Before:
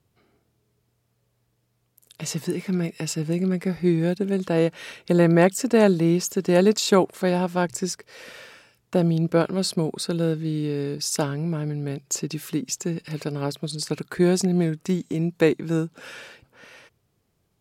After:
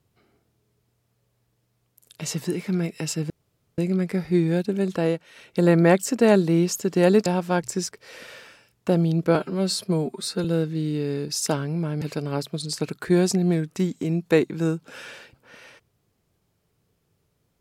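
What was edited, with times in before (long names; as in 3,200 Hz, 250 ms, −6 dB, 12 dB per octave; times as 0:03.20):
0:03.30: splice in room tone 0.48 s
0:04.42–0:05.21: duck −11.5 dB, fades 0.34 s equal-power
0:06.78–0:07.32: remove
0:09.41–0:10.14: time-stretch 1.5×
0:11.71–0:13.11: remove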